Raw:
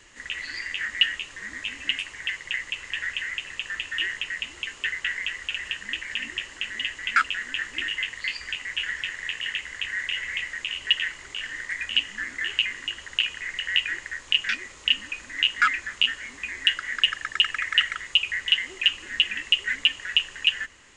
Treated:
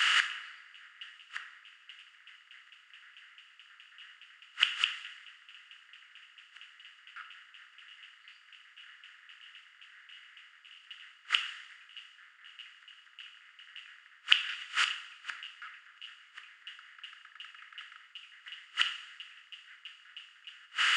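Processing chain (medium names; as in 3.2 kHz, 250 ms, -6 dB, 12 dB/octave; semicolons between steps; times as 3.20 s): spectral levelling over time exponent 0.4; high-pass 900 Hz 12 dB/octave; inverted gate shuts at -14 dBFS, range -24 dB; on a send at -7 dB: reverberation, pre-delay 3 ms; on the sum: three bands expanded up and down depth 100%; trim -7 dB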